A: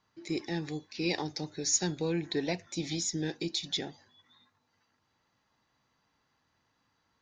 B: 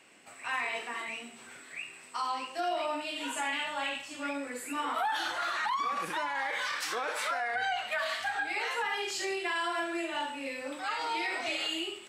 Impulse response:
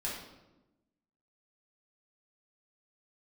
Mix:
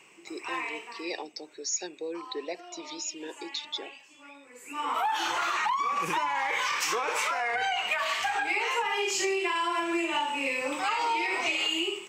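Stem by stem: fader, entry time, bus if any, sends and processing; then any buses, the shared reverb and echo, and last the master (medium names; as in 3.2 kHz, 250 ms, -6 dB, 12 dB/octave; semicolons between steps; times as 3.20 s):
-1.5 dB, 0.00 s, no send, resonances exaggerated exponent 1.5; high-pass 370 Hz 24 dB/octave
+2.0 dB, 0.00 s, no send, rippled EQ curve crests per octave 0.75, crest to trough 9 dB; level rider gain up to 7 dB; auto duck -23 dB, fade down 1.30 s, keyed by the first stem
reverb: none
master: compression 10:1, threshold -25 dBFS, peak gain reduction 10.5 dB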